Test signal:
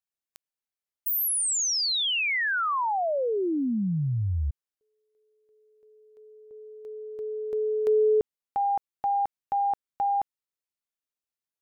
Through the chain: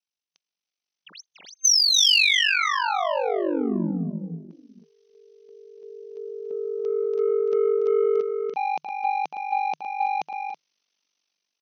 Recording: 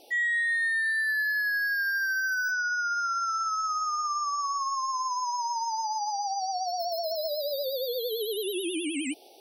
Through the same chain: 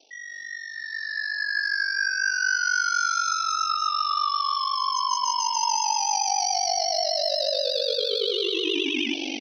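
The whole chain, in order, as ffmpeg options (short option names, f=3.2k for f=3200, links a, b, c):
-filter_complex "[0:a]areverse,acompressor=threshold=-34dB:ratio=8:attack=0.57:release=397:knee=6:detection=rms,areverse,asoftclip=type=tanh:threshold=-35dB,asplit=2[a][b];[b]aecho=0:1:286|328:0.398|0.422[c];[a][c]amix=inputs=2:normalize=0,aeval=exprs='val(0)*sin(2*PI*24*n/s)':c=same,afftfilt=real='re*between(b*sr/4096,160,6300)':imag='im*between(b*sr/4096,160,6300)':win_size=4096:overlap=0.75,dynaudnorm=f=860:g=3:m=16dB,aexciter=amount=2.2:drive=6.8:freq=2.4k"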